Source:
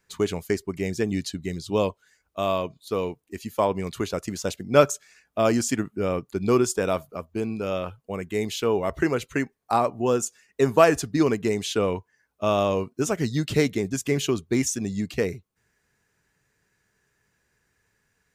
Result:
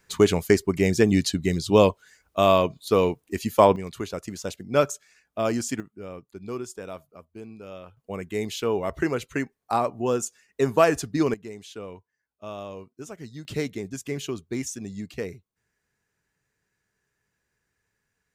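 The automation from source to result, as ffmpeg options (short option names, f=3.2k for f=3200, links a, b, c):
-af "asetnsamples=n=441:p=0,asendcmd='3.76 volume volume -4dB;5.8 volume volume -13dB;7.97 volume volume -2dB;11.34 volume volume -14.5dB;13.45 volume volume -7dB',volume=6.5dB"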